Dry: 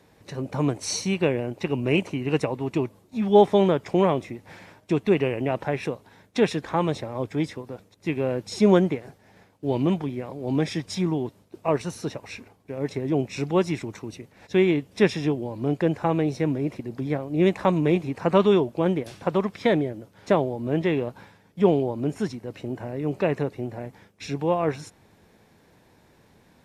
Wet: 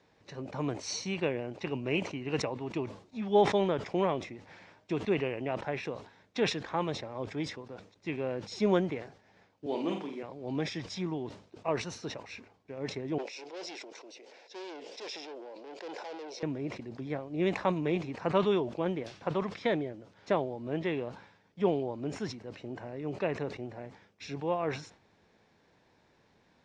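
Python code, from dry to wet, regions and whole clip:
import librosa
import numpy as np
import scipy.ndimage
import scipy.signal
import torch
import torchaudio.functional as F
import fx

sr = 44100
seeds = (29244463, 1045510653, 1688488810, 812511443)

y = fx.chain(x, sr, fx.highpass(hz=220.0, slope=24),
    fx.high_shelf(hz=6800.0, db=11.5),
    fx.room_flutter(wall_m=7.8, rt60_s=0.45), at=(9.66, 10.23))
y = fx.chain(y, sr, fx.tube_stage(drive_db=30.0, bias=0.3),
    fx.cabinet(low_hz=370.0, low_slope=24, high_hz=8700.0, hz=(500.0, 1200.0, 1800.0, 5100.0), db=(4, -9, -5, 5)),
    fx.sustainer(db_per_s=26.0), at=(13.18, 16.43))
y = scipy.signal.sosfilt(scipy.signal.butter(4, 6300.0, 'lowpass', fs=sr, output='sos'), y)
y = fx.low_shelf(y, sr, hz=320.0, db=-6.0)
y = fx.sustainer(y, sr, db_per_s=120.0)
y = y * librosa.db_to_amplitude(-6.5)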